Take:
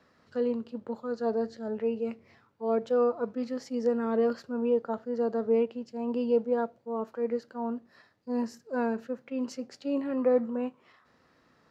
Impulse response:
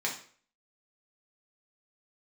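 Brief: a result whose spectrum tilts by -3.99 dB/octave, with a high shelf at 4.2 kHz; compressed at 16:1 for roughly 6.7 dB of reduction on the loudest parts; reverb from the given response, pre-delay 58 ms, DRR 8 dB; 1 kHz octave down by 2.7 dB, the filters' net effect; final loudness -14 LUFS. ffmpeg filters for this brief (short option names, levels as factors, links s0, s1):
-filter_complex "[0:a]equalizer=f=1000:t=o:g=-3.5,highshelf=f=4200:g=-8,acompressor=threshold=0.0447:ratio=16,asplit=2[s0][s1];[1:a]atrim=start_sample=2205,adelay=58[s2];[s1][s2]afir=irnorm=-1:irlink=0,volume=0.188[s3];[s0][s3]amix=inputs=2:normalize=0,volume=9.44"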